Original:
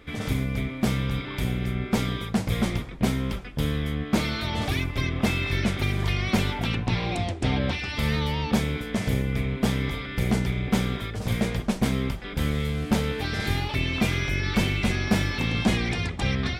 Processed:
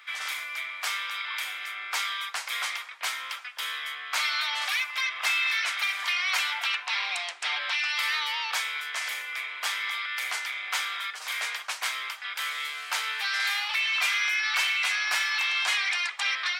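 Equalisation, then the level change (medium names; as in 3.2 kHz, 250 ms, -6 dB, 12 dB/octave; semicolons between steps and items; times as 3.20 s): high-pass 1.1 kHz 24 dB/octave; peaking EQ 12 kHz -4 dB 0.87 oct; band-stop 3.5 kHz, Q 26; +5.5 dB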